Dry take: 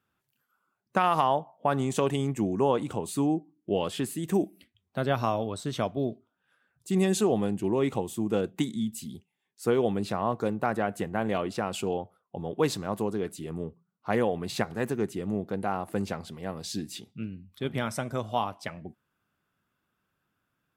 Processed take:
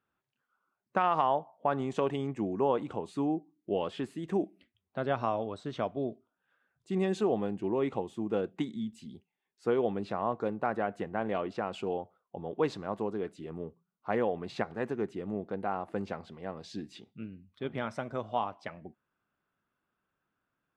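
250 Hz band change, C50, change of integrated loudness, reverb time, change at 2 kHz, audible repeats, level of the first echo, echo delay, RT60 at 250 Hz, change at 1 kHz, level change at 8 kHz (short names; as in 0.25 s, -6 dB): -5.0 dB, none, -4.0 dB, none, -4.5 dB, none, none, none, none, -3.0 dB, under -15 dB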